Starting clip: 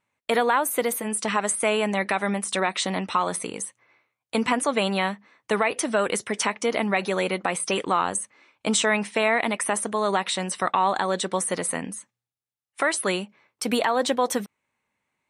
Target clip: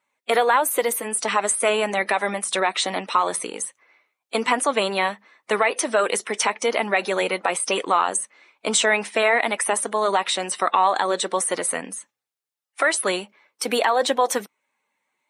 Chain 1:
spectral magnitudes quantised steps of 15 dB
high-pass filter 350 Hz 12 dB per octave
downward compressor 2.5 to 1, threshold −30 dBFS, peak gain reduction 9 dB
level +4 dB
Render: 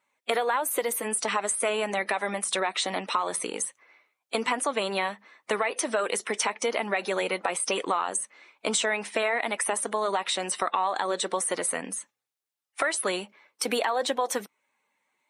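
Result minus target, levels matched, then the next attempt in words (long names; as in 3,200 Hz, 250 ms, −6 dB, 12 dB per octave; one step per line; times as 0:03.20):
downward compressor: peak gain reduction +9 dB
spectral magnitudes quantised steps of 15 dB
high-pass filter 350 Hz 12 dB per octave
level +4 dB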